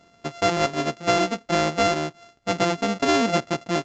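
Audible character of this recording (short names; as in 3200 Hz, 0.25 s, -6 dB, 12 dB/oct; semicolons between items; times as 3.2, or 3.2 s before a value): a buzz of ramps at a fixed pitch in blocks of 64 samples; µ-law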